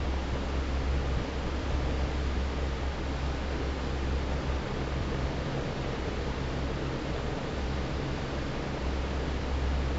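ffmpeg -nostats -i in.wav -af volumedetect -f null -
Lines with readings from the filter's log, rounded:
mean_volume: -30.9 dB
max_volume: -17.9 dB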